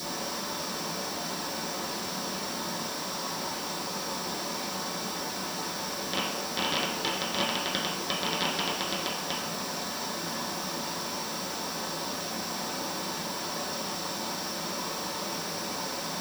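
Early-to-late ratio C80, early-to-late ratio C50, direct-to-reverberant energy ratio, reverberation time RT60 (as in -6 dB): 6.5 dB, 4.0 dB, -8.5 dB, 0.70 s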